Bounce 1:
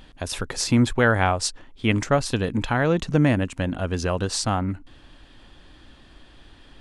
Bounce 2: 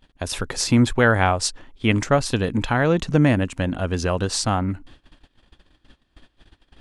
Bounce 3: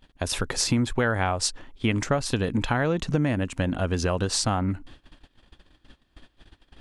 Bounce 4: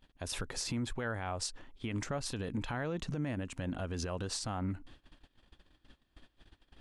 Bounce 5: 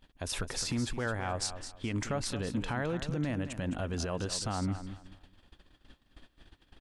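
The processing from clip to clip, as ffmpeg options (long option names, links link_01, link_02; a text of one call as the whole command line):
ffmpeg -i in.wav -af "agate=range=-21dB:threshold=-45dB:ratio=16:detection=peak,volume=2dB" out.wav
ffmpeg -i in.wav -af "acompressor=threshold=-20dB:ratio=5" out.wav
ffmpeg -i in.wav -af "alimiter=limit=-19dB:level=0:latency=1:release=66,volume=-8dB" out.wav
ffmpeg -i in.wav -af "aecho=1:1:212|424|636:0.282|0.0705|0.0176,volume=3dB" out.wav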